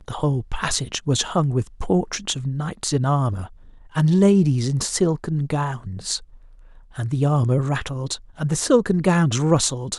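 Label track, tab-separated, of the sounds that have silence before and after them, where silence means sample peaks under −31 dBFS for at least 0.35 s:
3.950000	6.180000	sound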